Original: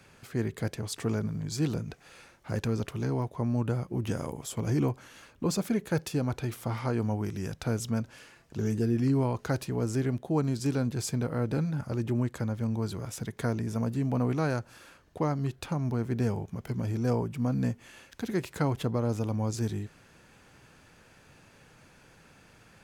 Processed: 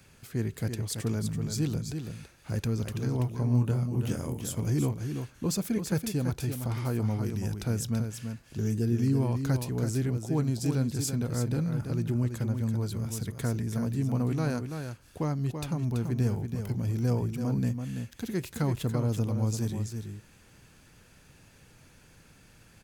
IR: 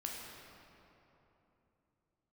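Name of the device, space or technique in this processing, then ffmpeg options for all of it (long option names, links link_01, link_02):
smiley-face EQ: -filter_complex "[0:a]lowshelf=frequency=95:gain=5.5,equalizer=frequency=860:width_type=o:width=2.8:gain=-5.5,highshelf=frequency=10000:gain=8,asettb=1/sr,asplit=3[link_01][link_02][link_03];[link_01]atrim=end=3.174[link_04];[link_02]atrim=start=3.17:end=4.41,asetpts=PTS-STARTPTS,afade=type=in:duration=0.004:curve=qsin,afade=type=out:start_time=1.236:duration=0.004:curve=qsin,asplit=2[link_05][link_06];[link_06]adelay=24,volume=-6dB[link_07];[link_05][link_07]amix=inputs=2:normalize=0,atrim=end_sample=54684[link_08];[link_03]atrim=start=4.406[link_09];[link_04][link_08]acrossfade=duration=0.004:curve1=hsin:curve2=qsin[link_10];[link_10][link_09]acrossfade=duration=0.004:curve1=qsin:curve2=hsin,aecho=1:1:333:0.447"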